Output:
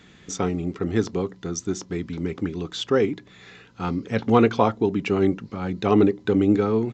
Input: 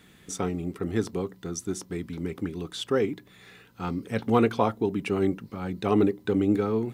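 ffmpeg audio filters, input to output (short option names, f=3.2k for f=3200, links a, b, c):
-af "aresample=16000,aresample=44100,volume=4.5dB"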